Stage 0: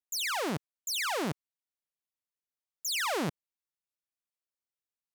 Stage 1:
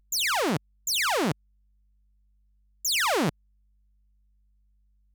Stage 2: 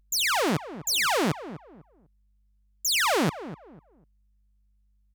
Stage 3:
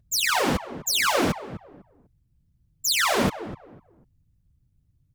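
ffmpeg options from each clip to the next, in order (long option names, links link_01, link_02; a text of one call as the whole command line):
ffmpeg -i in.wav -af "aeval=exprs='val(0)+0.000708*(sin(2*PI*50*n/s)+sin(2*PI*2*50*n/s)/2+sin(2*PI*3*50*n/s)/3+sin(2*PI*4*50*n/s)/4+sin(2*PI*5*50*n/s)/5)':channel_layout=same,anlmdn=0.1,volume=6.5dB" out.wav
ffmpeg -i in.wav -filter_complex "[0:a]asplit=2[link_01][link_02];[link_02]adelay=249,lowpass=frequency=1200:poles=1,volume=-13dB,asplit=2[link_03][link_04];[link_04]adelay=249,lowpass=frequency=1200:poles=1,volume=0.28,asplit=2[link_05][link_06];[link_06]adelay=249,lowpass=frequency=1200:poles=1,volume=0.28[link_07];[link_01][link_03][link_05][link_07]amix=inputs=4:normalize=0,volume=1dB" out.wav
ffmpeg -i in.wav -af "afftfilt=real='hypot(re,im)*cos(2*PI*random(0))':imag='hypot(re,im)*sin(2*PI*random(1))':win_size=512:overlap=0.75,volume=8dB" out.wav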